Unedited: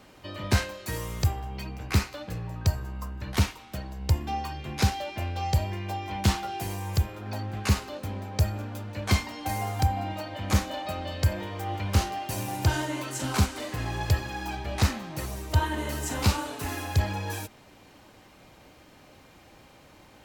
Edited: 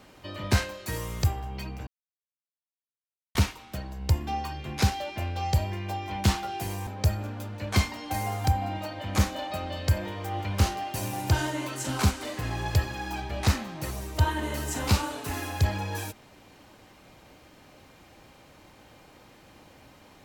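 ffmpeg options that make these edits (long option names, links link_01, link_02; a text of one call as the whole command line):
ffmpeg -i in.wav -filter_complex "[0:a]asplit=4[link_01][link_02][link_03][link_04];[link_01]atrim=end=1.87,asetpts=PTS-STARTPTS,afade=type=out:start_time=1.866:duration=0.004:curve=hsin[link_05];[link_02]atrim=start=1.87:end=3.35,asetpts=PTS-STARTPTS,volume=0[link_06];[link_03]atrim=start=3.35:end=6.872,asetpts=PTS-STARTPTS,afade=type=in:duration=0.004:curve=hsin[link_07];[link_04]atrim=start=8.218[link_08];[link_05][link_06][link_07]concat=n=3:v=0:a=1[link_09];[link_09][link_08]acrossfade=duration=0.004:curve1=hsin:curve2=hsin" out.wav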